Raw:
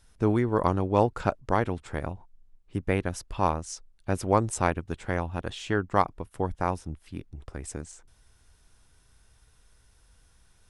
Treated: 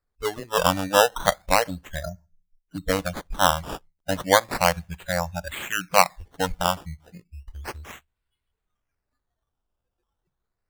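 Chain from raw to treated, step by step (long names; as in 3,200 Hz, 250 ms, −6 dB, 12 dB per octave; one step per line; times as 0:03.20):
noise reduction from a noise print of the clip's start 28 dB
on a send at −21.5 dB: convolution reverb RT60 0.35 s, pre-delay 3 ms
on the sum: sample-and-hold swept by an LFO 14×, swing 100% 0.33 Hz
level +6.5 dB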